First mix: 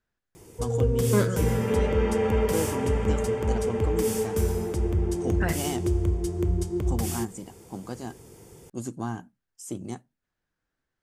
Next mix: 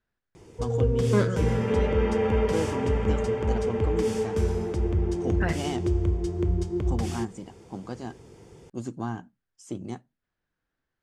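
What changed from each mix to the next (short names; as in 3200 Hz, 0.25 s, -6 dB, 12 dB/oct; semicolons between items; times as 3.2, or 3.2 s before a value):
master: add LPF 5100 Hz 12 dB/oct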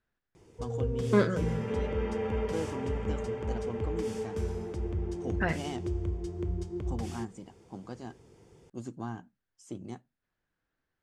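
first voice -6.0 dB; background -8.0 dB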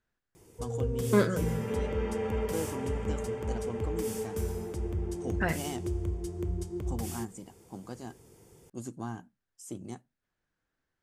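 master: remove LPF 5100 Hz 12 dB/oct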